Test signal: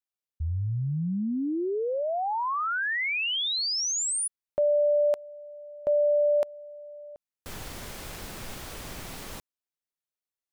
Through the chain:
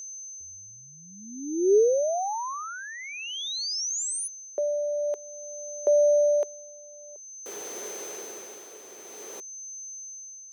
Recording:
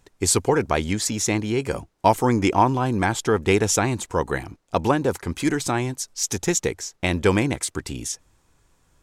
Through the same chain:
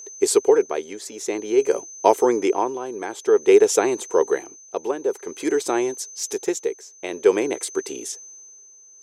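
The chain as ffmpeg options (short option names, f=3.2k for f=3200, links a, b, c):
-af "aeval=exprs='val(0)+0.0178*sin(2*PI*6200*n/s)':c=same,tremolo=f=0.51:d=0.66,highpass=f=410:t=q:w=4.9,volume=-2dB"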